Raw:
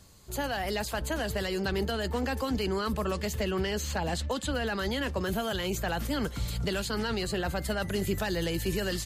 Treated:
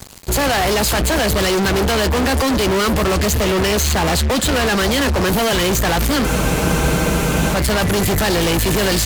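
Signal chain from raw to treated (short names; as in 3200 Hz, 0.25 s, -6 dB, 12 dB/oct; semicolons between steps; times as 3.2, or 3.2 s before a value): fuzz box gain 45 dB, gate -52 dBFS; spectral freeze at 6.26, 1.28 s; gain -2 dB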